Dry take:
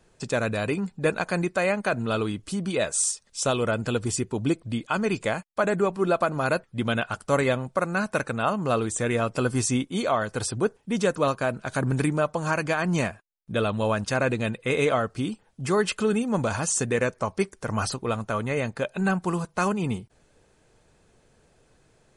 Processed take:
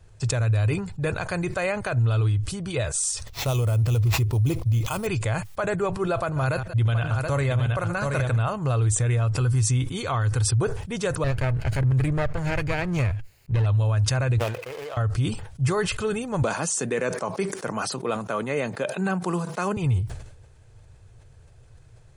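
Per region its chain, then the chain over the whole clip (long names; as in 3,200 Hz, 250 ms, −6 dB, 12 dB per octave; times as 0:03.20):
0:03.27–0:05.07: sample-rate reduction 9,600 Hz + parametric band 1,600 Hz −9.5 dB 0.47 octaves
0:06.22–0:08.49: delay that plays each chunk backwards 103 ms, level −14 dB + single-tap delay 726 ms −7.5 dB
0:09.30–0:10.58: parametric band 620 Hz −11.5 dB 0.28 octaves + upward compression, threshold −39 dBFS
0:11.24–0:13.66: lower of the sound and its delayed copy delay 0.44 ms + high-shelf EQ 4,900 Hz −10 dB
0:14.38–0:14.97: running median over 25 samples + high-pass filter 520 Hz + downward compressor, threshold −30 dBFS
0:16.42–0:19.77: Butterworth high-pass 180 Hz 48 dB per octave + low-shelf EQ 440 Hz +6.5 dB
whole clip: low shelf with overshoot 150 Hz +11.5 dB, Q 3; brickwall limiter −16 dBFS; level that may fall only so fast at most 69 dB per second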